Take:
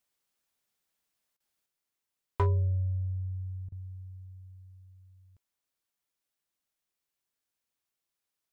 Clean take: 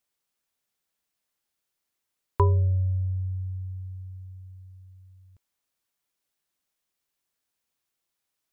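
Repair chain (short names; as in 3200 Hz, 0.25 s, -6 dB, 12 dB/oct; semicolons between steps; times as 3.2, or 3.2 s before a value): clip repair -19.5 dBFS; interpolate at 1.37/3.69, 29 ms; gain correction +5 dB, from 1.66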